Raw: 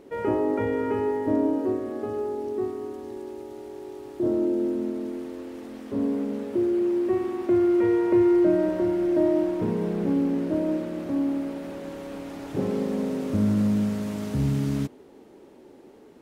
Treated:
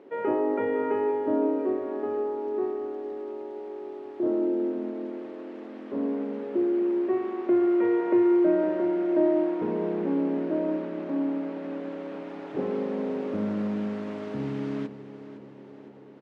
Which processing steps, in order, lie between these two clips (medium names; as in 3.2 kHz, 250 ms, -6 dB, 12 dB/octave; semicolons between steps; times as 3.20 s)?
band-pass 280–2600 Hz; on a send: feedback delay 509 ms, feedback 59%, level -14 dB